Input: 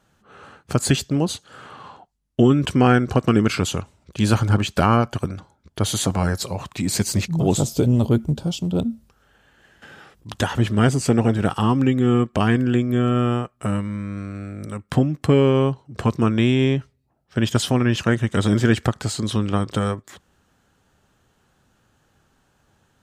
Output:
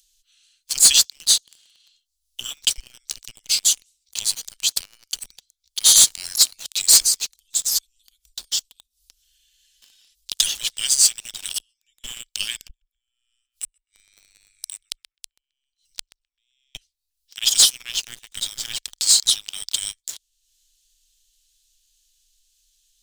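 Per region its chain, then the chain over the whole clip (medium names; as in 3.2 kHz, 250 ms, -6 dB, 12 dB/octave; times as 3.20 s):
2.77–5.29 s: treble shelf 6.2 kHz +6 dB + compression 5:1, threshold -26 dBFS
7.00–10.30 s: comb 4 ms, depth 54% + compression 8:1, threshold -30 dBFS
11.54–12.04 s: treble shelf 2.2 kHz +6.5 dB + inverted gate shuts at -13 dBFS, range -26 dB
12.68–16.75 s: compression, threshold -19 dBFS + inverted gate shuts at -18 dBFS, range -39 dB + tape echo 130 ms, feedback 65%, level -4.5 dB, low-pass 1.1 kHz
17.92–18.98 s: companding laws mixed up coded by A + treble shelf 2.6 kHz -8.5 dB
whole clip: inverse Chebyshev band-stop 110–950 Hz, stop band 70 dB; upward compressor, threshold -55 dBFS; waveshaping leveller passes 3; trim +6.5 dB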